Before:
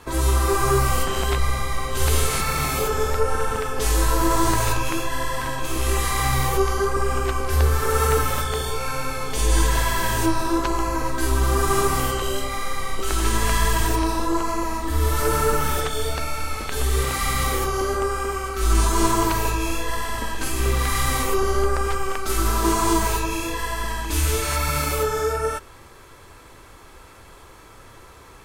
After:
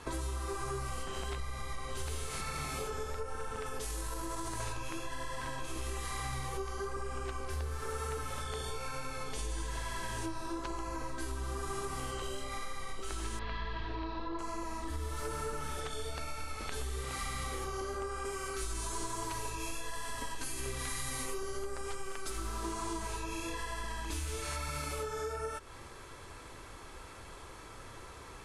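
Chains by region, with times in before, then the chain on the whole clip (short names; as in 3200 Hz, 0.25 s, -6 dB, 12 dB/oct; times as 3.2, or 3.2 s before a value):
3.66–4.6 high shelf 11000 Hz +11.5 dB + compressor, threshold -20 dBFS
13.39–14.39 elliptic low-pass 4200 Hz, stop band 80 dB + short-mantissa float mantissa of 8-bit
18.25–22.3 high shelf 5500 Hz +8 dB + comb 7.2 ms, depth 45%
whole clip: Chebyshev low-pass 11000 Hz, order 4; compressor, threshold -33 dBFS; gain -2.5 dB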